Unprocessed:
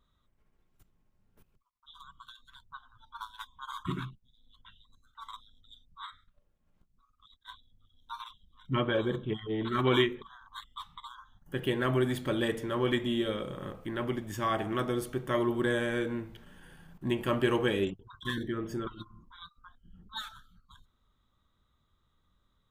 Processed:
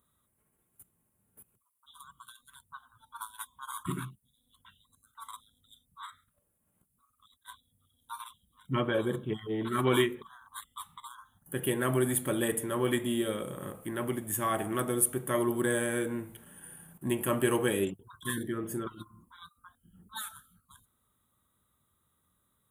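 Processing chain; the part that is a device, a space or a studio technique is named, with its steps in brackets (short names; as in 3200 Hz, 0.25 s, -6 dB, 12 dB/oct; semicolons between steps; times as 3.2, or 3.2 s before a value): budget condenser microphone (HPF 89 Hz; resonant high shelf 7200 Hz +14 dB, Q 3)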